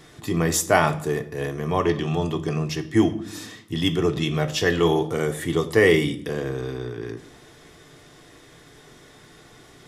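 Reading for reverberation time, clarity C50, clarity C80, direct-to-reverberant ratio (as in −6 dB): 0.65 s, 15.0 dB, 18.0 dB, 4.5 dB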